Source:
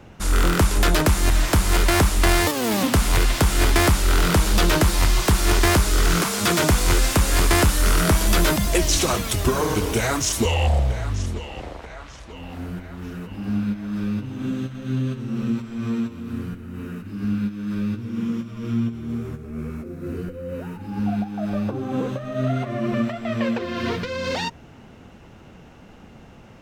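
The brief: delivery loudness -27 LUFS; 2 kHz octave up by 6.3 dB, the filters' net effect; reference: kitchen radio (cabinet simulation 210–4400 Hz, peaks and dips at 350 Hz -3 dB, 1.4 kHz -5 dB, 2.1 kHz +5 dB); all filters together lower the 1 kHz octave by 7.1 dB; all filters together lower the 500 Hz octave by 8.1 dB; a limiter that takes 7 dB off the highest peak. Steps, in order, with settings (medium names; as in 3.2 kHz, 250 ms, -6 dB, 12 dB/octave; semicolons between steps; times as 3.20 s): peaking EQ 500 Hz -7.5 dB; peaking EQ 1 kHz -8 dB; peaking EQ 2 kHz +8 dB; peak limiter -12 dBFS; cabinet simulation 210–4400 Hz, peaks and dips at 350 Hz -3 dB, 1.4 kHz -5 dB, 2.1 kHz +5 dB; trim -1.5 dB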